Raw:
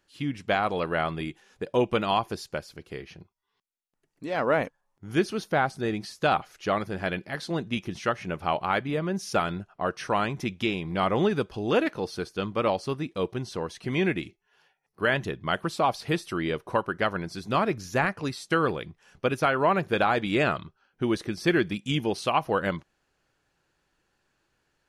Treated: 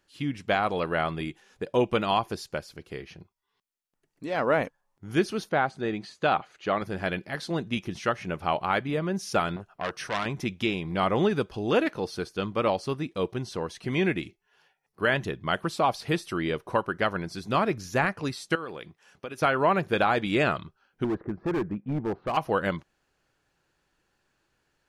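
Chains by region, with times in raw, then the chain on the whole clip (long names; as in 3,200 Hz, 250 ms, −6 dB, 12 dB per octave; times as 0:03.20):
0:05.49–0:06.82: high-pass filter 150 Hz 6 dB per octave + high-frequency loss of the air 82 metres + notch filter 5,400 Hz, Q 5.6
0:09.56–0:10.26: high-shelf EQ 8,500 Hz +5 dB + saturating transformer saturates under 2,400 Hz
0:18.55–0:19.42: high-pass filter 270 Hz 6 dB per octave + downward compressor 4 to 1, threshold −34 dBFS
0:21.04–0:22.37: low-pass filter 1,400 Hz 24 dB per octave + upward compression, threshold −43 dBFS + hard clipping −24 dBFS
whole clip: no processing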